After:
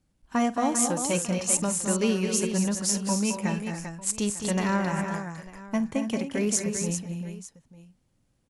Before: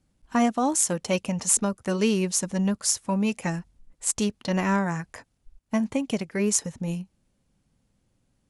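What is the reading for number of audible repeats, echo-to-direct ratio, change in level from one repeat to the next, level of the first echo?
5, -3.0 dB, no regular repeats, -17.5 dB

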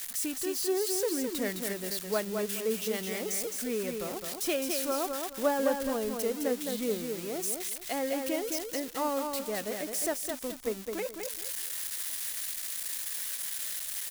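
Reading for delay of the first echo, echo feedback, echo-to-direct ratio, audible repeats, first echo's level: 212 ms, 26%, -4.5 dB, 3, -5.0 dB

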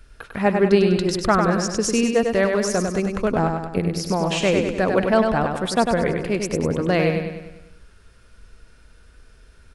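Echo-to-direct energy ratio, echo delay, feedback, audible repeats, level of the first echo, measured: -3.5 dB, 99 ms, 52%, 6, -5.0 dB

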